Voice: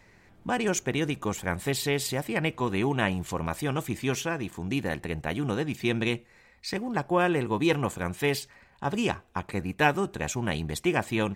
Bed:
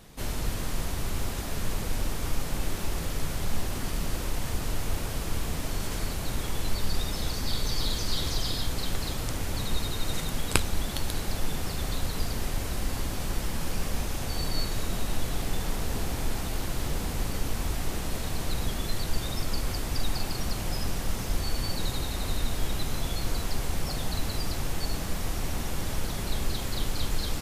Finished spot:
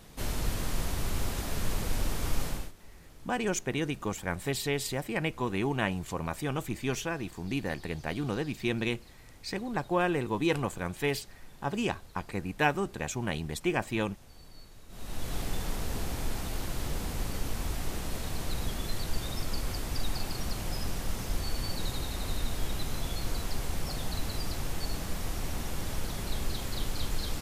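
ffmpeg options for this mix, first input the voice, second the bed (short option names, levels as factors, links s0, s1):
-filter_complex "[0:a]adelay=2800,volume=0.668[s0];[1:a]volume=7.94,afade=t=out:st=2.45:d=0.27:silence=0.0841395,afade=t=in:st=14.88:d=0.48:silence=0.112202[s1];[s0][s1]amix=inputs=2:normalize=0"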